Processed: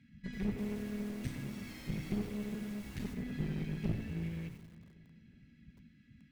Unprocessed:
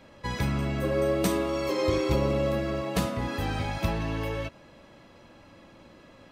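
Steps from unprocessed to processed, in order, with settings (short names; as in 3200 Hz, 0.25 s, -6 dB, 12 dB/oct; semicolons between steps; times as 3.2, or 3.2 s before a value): elliptic band-stop 200–2100 Hz, stop band 40 dB; RIAA curve playback; notches 60/120 Hz; spectral gate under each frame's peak -10 dB weak; resonant high shelf 1900 Hz -7.5 dB, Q 1.5; 0.57–3.13 added noise pink -54 dBFS; one-sided clip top -39.5 dBFS; darkening echo 0.37 s, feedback 53%, low-pass 2000 Hz, level -19.5 dB; lo-fi delay 89 ms, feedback 35%, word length 9-bit, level -9 dB; gain -1 dB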